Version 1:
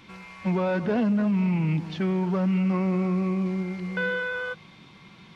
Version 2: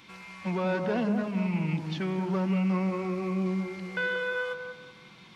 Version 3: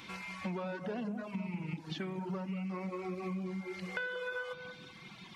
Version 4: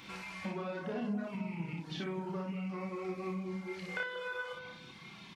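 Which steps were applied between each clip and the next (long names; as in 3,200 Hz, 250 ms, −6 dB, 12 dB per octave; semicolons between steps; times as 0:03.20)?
spectral tilt +1.5 dB per octave; on a send: delay with a low-pass on its return 186 ms, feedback 31%, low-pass 1,100 Hz, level −4.5 dB; on the sum: level −2.5 dB
reverb reduction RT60 1.2 s; downward compressor 10 to 1, threshold −39 dBFS, peak gain reduction 14 dB; on a send at −16 dB: convolution reverb RT60 0.60 s, pre-delay 33 ms; on the sum: level +3.5 dB
ambience of single reflections 30 ms −4.5 dB, 59 ms −3.5 dB; level −2 dB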